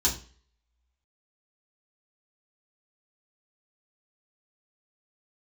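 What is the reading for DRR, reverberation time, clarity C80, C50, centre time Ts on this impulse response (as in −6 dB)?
−6.5 dB, 0.40 s, 15.5 dB, 10.5 dB, 19 ms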